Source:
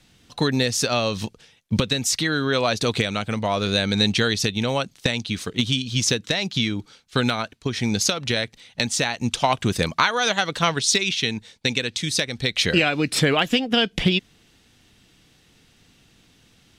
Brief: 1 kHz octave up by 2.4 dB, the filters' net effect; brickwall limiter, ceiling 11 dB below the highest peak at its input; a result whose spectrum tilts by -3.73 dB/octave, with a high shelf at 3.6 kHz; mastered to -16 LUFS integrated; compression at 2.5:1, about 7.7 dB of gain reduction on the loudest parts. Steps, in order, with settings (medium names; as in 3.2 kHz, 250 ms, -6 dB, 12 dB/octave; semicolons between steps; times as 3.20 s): peaking EQ 1 kHz +3.5 dB; treble shelf 3.6 kHz -3.5 dB; compression 2.5:1, threshold -25 dBFS; trim +14.5 dB; peak limiter -4.5 dBFS